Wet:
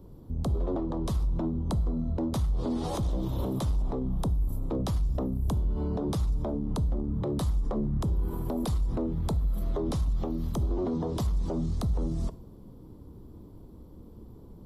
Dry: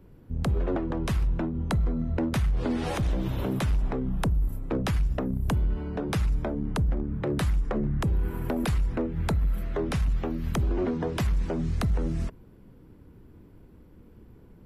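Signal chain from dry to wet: high-order bell 2 kHz -14 dB 1.2 oct; peak limiter -26.5 dBFS, peak gain reduction 8.5 dB; reverberation, pre-delay 3 ms, DRR 14.5 dB; trim +3.5 dB

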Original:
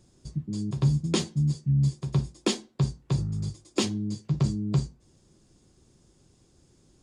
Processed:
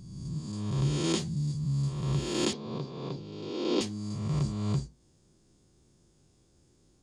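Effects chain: reverse spectral sustain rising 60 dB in 1.38 s; 2.53–3.81 s: cabinet simulation 230–4700 Hz, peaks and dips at 260 Hz +5 dB, 460 Hz +7 dB, 1.3 kHz -3 dB, 1.8 kHz -8 dB, 2.7 kHz -3 dB; trim -7 dB

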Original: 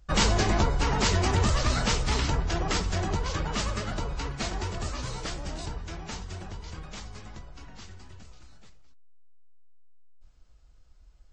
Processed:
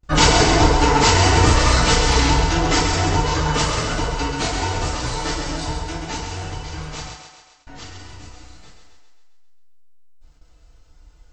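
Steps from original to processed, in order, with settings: vibrato 0.33 Hz 12 cents; 7.09–7.67 s: inverted gate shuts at -41 dBFS, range -32 dB; thinning echo 133 ms, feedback 58%, high-pass 300 Hz, level -5.5 dB; FDN reverb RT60 0.44 s, low-frequency decay 0.75×, high-frequency decay 0.9×, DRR -4.5 dB; gate with hold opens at -46 dBFS; trim +4 dB

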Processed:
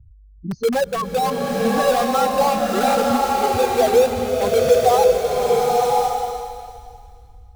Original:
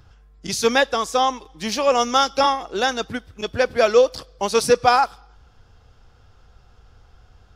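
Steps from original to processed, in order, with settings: spectral contrast enhancement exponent 3.5; low-pass 1 kHz 12 dB/octave; in parallel at -5.5 dB: integer overflow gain 21.5 dB; on the sum: buffer glitch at 2.86/6.08 s, samples 1024, times 3; swelling reverb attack 1070 ms, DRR -2.5 dB

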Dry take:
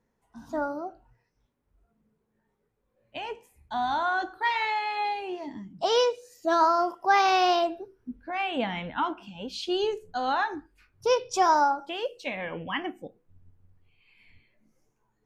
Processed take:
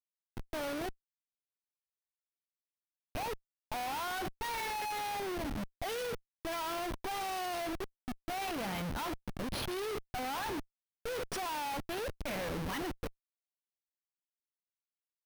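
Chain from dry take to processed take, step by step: modulation noise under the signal 13 dB; Schmitt trigger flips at -35.5 dBFS; careless resampling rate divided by 3×, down filtered, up hold; trim -7.5 dB

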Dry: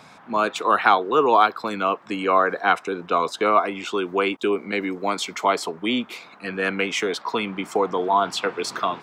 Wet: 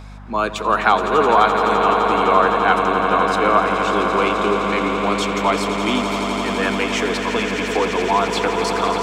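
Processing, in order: hum 50 Hz, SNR 15 dB; echo with a slow build-up 85 ms, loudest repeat 8, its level -10.5 dB; trim +1 dB

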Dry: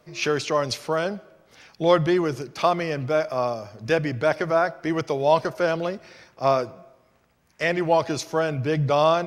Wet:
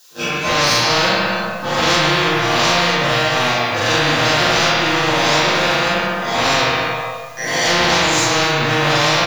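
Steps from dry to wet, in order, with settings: reverse spectral sustain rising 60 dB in 0.97 s; spectral noise reduction 24 dB; gate with hold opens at -40 dBFS; treble shelf 7.8 kHz -10 dB; waveshaping leveller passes 5; level rider; chord resonator A#2 sus4, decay 0.31 s; added noise violet -53 dBFS; doubling 41 ms -2 dB; reverberation RT60 1.1 s, pre-delay 3 ms, DRR -5.5 dB; spectrum-flattening compressor 4:1; trim -12.5 dB

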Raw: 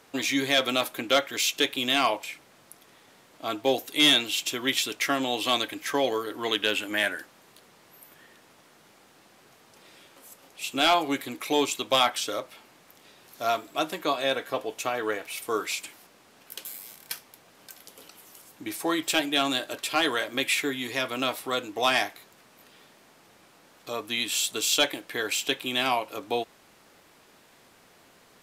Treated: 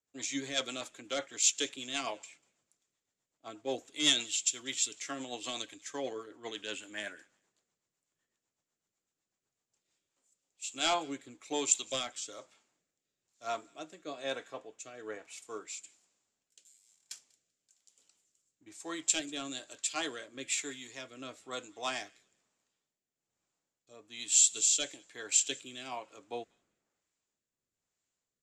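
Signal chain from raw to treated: rotary cabinet horn 8 Hz, later 1.1 Hz, at 9.49 s; four-pole ladder low-pass 7.7 kHz, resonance 75%; on a send: feedback echo behind a high-pass 194 ms, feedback 32%, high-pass 1.5 kHz, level -22.5 dB; on the sum: three bands expanded up and down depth 70%

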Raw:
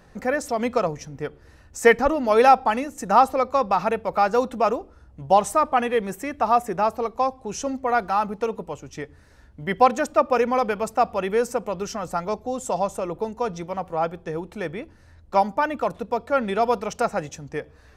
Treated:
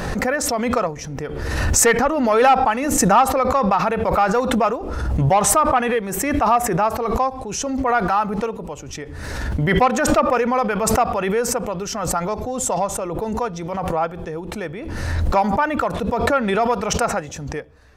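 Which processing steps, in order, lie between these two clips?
saturation -10 dBFS, distortion -16 dB; dynamic bell 1.4 kHz, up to +5 dB, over -32 dBFS, Q 0.82; swell ahead of each attack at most 30 dB/s

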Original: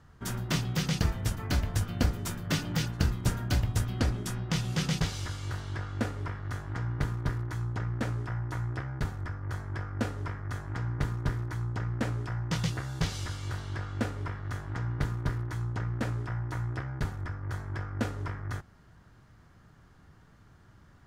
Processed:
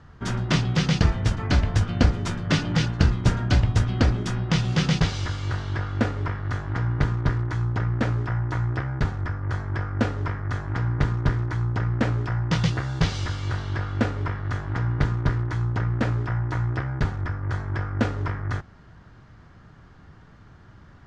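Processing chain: Bessel low-pass 4.7 kHz, order 4; trim +8 dB

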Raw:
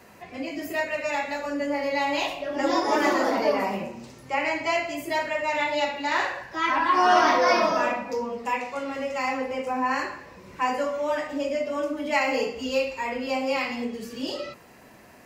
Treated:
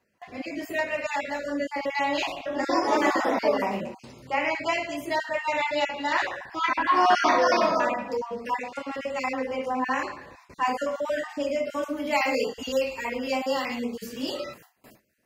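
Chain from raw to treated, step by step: random holes in the spectrogram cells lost 20%; gate with hold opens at -40 dBFS; treble shelf 11 kHz -5.5 dB, from 10.65 s +3 dB, from 11.69 s +11 dB

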